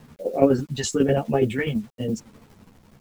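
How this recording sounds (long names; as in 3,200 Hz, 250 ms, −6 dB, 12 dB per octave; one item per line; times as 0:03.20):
phaser sweep stages 2, 0.99 Hz, lowest notch 460–1,300 Hz
a quantiser's noise floor 10 bits, dither none
tremolo saw down 12 Hz, depth 65%
a shimmering, thickened sound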